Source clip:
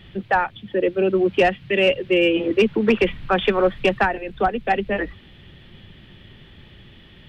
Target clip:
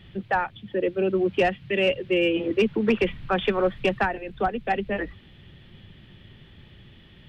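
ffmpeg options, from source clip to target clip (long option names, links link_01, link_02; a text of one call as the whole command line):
ffmpeg -i in.wav -af "equalizer=frequency=120:width=0.87:gain=3.5,volume=-5dB" out.wav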